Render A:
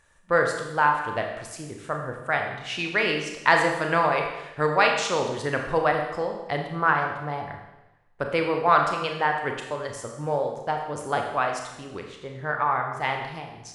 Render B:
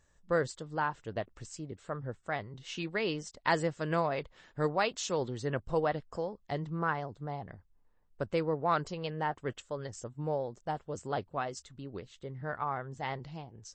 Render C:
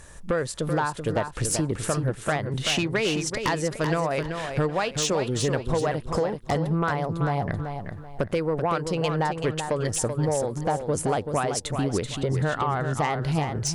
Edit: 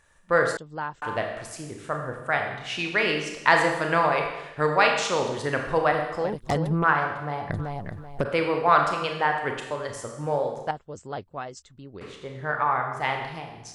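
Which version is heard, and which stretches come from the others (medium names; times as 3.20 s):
A
0.57–1.02 s: from B
6.24–6.84 s: from C
7.50–8.25 s: from C
10.71–12.01 s: from B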